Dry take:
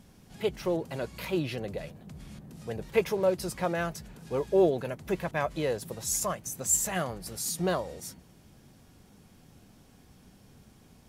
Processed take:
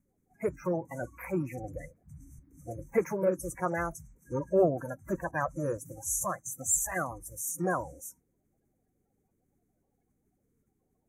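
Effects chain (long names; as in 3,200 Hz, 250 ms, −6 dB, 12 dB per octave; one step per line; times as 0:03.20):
spectral magnitudes quantised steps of 30 dB
noise reduction from a noise print of the clip's start 18 dB
Chebyshev band-stop filter 2,300–6,100 Hz, order 4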